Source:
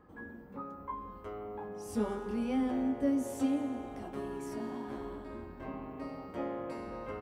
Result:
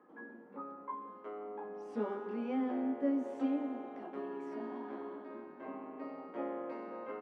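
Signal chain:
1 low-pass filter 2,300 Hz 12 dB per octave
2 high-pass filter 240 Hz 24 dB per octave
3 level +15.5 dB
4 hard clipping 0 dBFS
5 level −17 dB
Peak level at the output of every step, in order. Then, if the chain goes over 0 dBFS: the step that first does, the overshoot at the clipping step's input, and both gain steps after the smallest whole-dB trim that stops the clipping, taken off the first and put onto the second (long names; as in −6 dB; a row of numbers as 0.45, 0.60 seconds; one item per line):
−20.5, −20.5, −5.0, −5.0, −22.0 dBFS
no step passes full scale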